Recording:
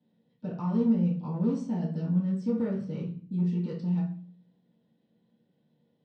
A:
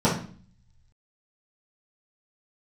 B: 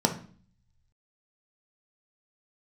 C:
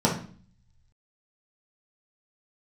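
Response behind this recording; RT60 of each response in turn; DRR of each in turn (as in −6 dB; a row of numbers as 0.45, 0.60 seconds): A; 0.45, 0.45, 0.45 seconds; −10.0, 3.5, −4.5 decibels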